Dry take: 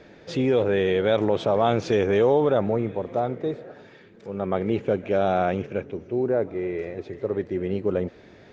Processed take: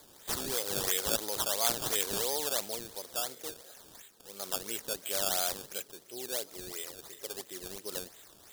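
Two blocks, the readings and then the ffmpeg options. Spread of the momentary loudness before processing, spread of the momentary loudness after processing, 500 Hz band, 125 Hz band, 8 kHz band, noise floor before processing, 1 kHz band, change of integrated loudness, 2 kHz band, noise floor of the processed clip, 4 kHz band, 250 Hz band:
11 LU, 15 LU, −17.5 dB, −21.0 dB, can't be measured, −50 dBFS, −12.0 dB, −8.5 dB, −7.5 dB, −57 dBFS, +4.5 dB, −20.0 dB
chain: -af "aderivative,acrusher=samples=15:mix=1:aa=0.000001:lfo=1:lforange=15:lforate=2.9,aexciter=amount=4.8:drive=3.9:freq=3300,volume=5.5dB"

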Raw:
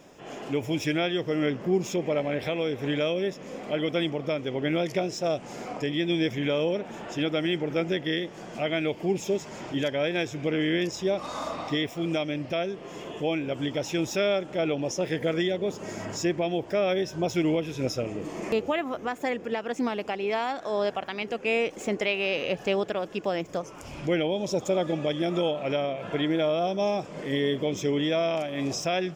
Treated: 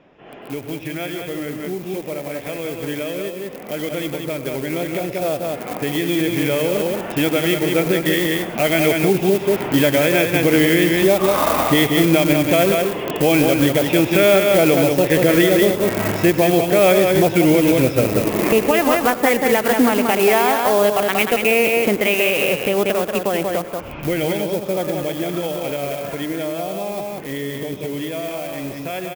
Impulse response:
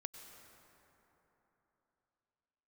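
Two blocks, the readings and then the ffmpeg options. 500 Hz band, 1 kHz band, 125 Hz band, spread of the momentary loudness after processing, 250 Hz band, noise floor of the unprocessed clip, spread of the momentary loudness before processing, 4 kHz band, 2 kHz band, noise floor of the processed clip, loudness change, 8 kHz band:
+10.0 dB, +11.0 dB, +10.0 dB, 13 LU, +10.0 dB, −43 dBFS, 6 LU, +8.0 dB, +11.5 dB, −32 dBFS, +10.5 dB, +13.5 dB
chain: -filter_complex "[0:a]lowpass=frequency=2900:width=0.5412,lowpass=frequency=2900:width=1.3066,asplit=2[link_01][link_02];[link_02]acrusher=bits=4:mix=0:aa=0.000001,volume=-11.5dB[link_03];[link_01][link_03]amix=inputs=2:normalize=0,aecho=1:1:185:0.531,alimiter=limit=-18.5dB:level=0:latency=1:release=139[link_04];[1:a]atrim=start_sample=2205,atrim=end_sample=6174[link_05];[link_04][link_05]afir=irnorm=-1:irlink=0,dynaudnorm=framelen=450:gausssize=31:maxgain=13dB,aemphasis=mode=production:type=50fm,volume=4.5dB"

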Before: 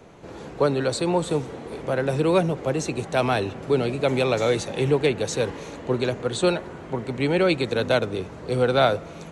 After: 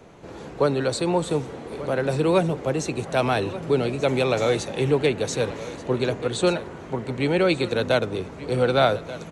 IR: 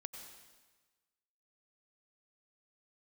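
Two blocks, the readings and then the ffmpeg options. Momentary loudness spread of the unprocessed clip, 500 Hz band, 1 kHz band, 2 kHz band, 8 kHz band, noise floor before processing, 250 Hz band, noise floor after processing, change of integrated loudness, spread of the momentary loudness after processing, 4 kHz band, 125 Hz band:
10 LU, 0.0 dB, 0.0 dB, 0.0 dB, 0.0 dB, −40 dBFS, 0.0 dB, −39 dBFS, 0.0 dB, 10 LU, 0.0 dB, 0.0 dB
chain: -af "aecho=1:1:1184:0.168"

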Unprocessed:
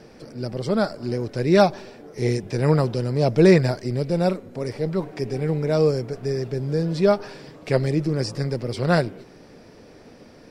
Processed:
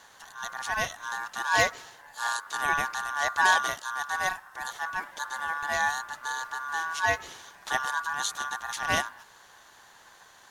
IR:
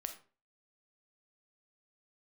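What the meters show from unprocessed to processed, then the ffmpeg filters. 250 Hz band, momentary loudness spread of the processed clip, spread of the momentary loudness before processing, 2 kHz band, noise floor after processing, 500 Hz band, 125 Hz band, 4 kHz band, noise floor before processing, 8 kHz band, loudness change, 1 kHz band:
−25.5 dB, 12 LU, 12 LU, +7.0 dB, −55 dBFS, −17.5 dB, −26.0 dB, +1.0 dB, −48 dBFS, +8.0 dB, −6.5 dB, +2.5 dB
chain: -af "crystalizer=i=4:c=0,aeval=exprs='val(0)*sin(2*PI*1300*n/s)':channel_layout=same,volume=-6dB"

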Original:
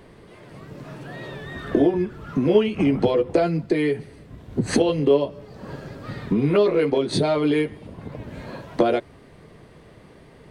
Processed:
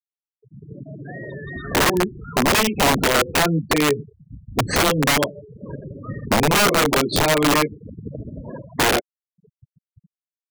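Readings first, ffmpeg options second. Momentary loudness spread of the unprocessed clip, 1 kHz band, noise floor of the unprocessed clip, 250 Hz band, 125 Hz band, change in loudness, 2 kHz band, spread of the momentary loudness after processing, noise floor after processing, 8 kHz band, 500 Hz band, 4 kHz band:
18 LU, +10.0 dB, −49 dBFS, −1.0 dB, +2.0 dB, +3.0 dB, +12.5 dB, 19 LU, below −85 dBFS, +16.5 dB, −2.0 dB, +12.0 dB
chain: -af "afftfilt=real='re*gte(hypot(re,im),0.0447)':imag='im*gte(hypot(re,im),0.0447)':win_size=1024:overlap=0.75,aeval=exprs='(mod(5.62*val(0)+1,2)-1)/5.62':channel_layout=same,volume=3.5dB"

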